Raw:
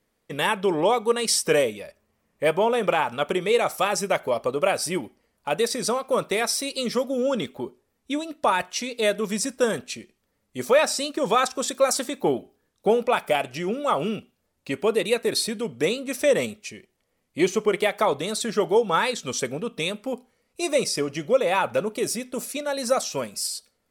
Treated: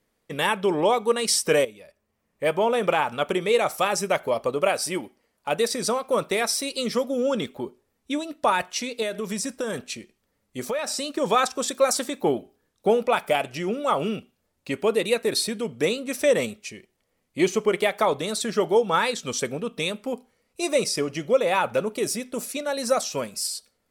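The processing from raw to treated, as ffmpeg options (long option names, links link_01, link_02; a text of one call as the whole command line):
ffmpeg -i in.wav -filter_complex "[0:a]asettb=1/sr,asplit=3[link_01][link_02][link_03];[link_01]atrim=end=4.694[link_04];[link_02]atrim=start=4.69:end=5.49,asetpts=PTS-STARTPTS,afade=type=in:duration=0.004:curve=qsin,afade=type=out:start_time=0.796:duration=0.004:curve=qsin,lowshelf=frequency=140:gain=-10[link_05];[link_03]atrim=start=5.486[link_06];[link_04][link_05]acrossfade=duration=0.004:curve1=hsin:curve2=qsin[link_07];[link_07][link_06]acrossfade=duration=0.004:curve1=qsin:curve2=hsin,asettb=1/sr,asplit=3[link_08][link_09][link_10];[link_08]atrim=end=9.024[link_11];[link_09]atrim=start=9.02:end=11.15,asetpts=PTS-STARTPTS,afade=type=in:duration=0.004:curve=qsin,afade=type=out:start_time=2.126:duration=0.004:curve=qsin,acompressor=threshold=-24dB:ratio=6:attack=3.2:release=140:knee=1:detection=peak[link_12];[link_10]atrim=start=11.146[link_13];[link_11][link_12]acrossfade=duration=0.004:curve1=hsin:curve2=qsin[link_14];[link_14][link_13]acrossfade=duration=0.004:curve1=qsin:curve2=hsin,asplit=2[link_15][link_16];[link_15]atrim=end=1.65,asetpts=PTS-STARTPTS,afade=type=out:start_time=1.646:duration=0.004:curve=hsin:silence=0.223872[link_17];[link_16]atrim=start=1.65,asetpts=PTS-STARTPTS,afade=type=in:duration=1.1:silence=0.223872[link_18];[link_17][link_18]concat=n=2:v=0:a=1" out.wav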